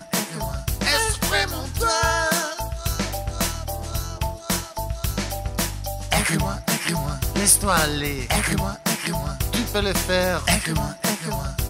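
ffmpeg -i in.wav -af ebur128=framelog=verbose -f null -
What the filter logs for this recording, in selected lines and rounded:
Integrated loudness:
  I:         -22.7 LUFS
  Threshold: -32.7 LUFS
Loudness range:
  LRA:         5.3 LU
  Threshold: -42.8 LUFS
  LRA low:   -26.2 LUFS
  LRA high:  -20.9 LUFS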